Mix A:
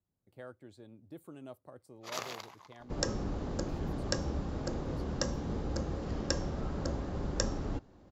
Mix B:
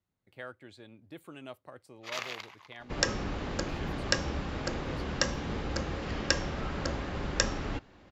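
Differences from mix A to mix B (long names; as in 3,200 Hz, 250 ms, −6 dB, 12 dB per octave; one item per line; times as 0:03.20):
first sound −6.5 dB
master: add parametric band 2,400 Hz +14.5 dB 2 octaves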